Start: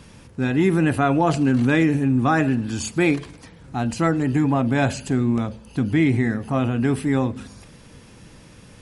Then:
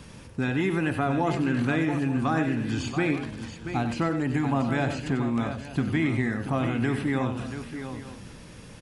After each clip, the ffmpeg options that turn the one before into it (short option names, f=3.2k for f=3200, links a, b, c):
-filter_complex "[0:a]acrossover=split=790|4400[a][b][c];[a]acompressor=threshold=-25dB:ratio=4[d];[b]acompressor=threshold=-31dB:ratio=4[e];[c]acompressor=threshold=-55dB:ratio=4[f];[d][e][f]amix=inputs=3:normalize=0,asplit=2[g][h];[h]aecho=0:1:94|682|881:0.335|0.335|0.15[i];[g][i]amix=inputs=2:normalize=0"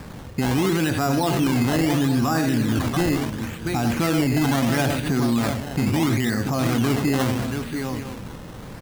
-af "acrusher=samples=13:mix=1:aa=0.000001:lfo=1:lforange=13:lforate=0.74,alimiter=limit=-21.5dB:level=0:latency=1:release=21,volume=8dB"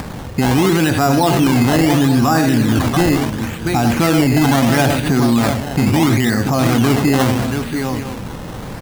-af "acompressor=mode=upward:threshold=-30dB:ratio=2.5,equalizer=f=790:t=o:w=0.56:g=2.5,volume=7dB"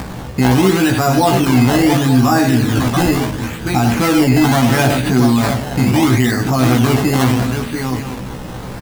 -filter_complex "[0:a]asplit=2[a][b];[b]adelay=16,volume=-3dB[c];[a][c]amix=inputs=2:normalize=0,volume=-1dB"